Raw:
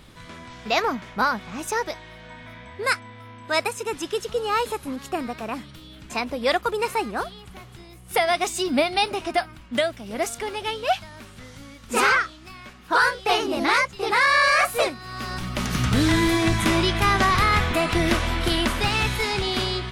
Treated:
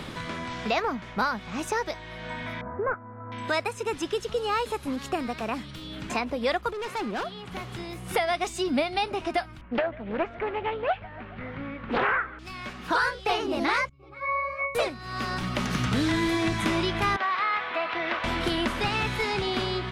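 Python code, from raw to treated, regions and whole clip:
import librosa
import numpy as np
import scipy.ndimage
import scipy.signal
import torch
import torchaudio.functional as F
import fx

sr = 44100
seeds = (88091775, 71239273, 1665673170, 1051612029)

y = fx.chain(x, sr, fx.cvsd(bps=32000),
    fx.ellip_lowpass(hz=1400.0, order=4, stop_db=80), at=(2.61, 3.32))
y = fx.chain(y, sr, fx.highpass(hz=140.0, slope=12),
    fx.high_shelf(hz=4900.0, db=-8.5),
    fx.overload_stage(gain_db=29.0), at=(6.73, 7.52))
y = fx.chain(y, sr, fx.lowpass(hz=2100.0, slope=24),
    fx.echo_feedback(ms=141, feedback_pct=53, wet_db=-22),
    fx.doppler_dist(depth_ms=0.6), at=(9.61, 12.39))
y = fx.chain(y, sr, fx.highpass(hz=96.0, slope=6),
    fx.high_shelf(hz=3600.0, db=9.5),
    fx.octave_resonator(note='C#', decay_s=0.37), at=(13.89, 14.75))
y = fx.chain(y, sr, fx.highpass(hz=740.0, slope=12),
    fx.air_absorb(metres=320.0), at=(17.16, 18.24))
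y = fx.high_shelf(y, sr, hz=7800.0, db=-11.5)
y = fx.band_squash(y, sr, depth_pct=70)
y = y * librosa.db_to_amplitude(-3.5)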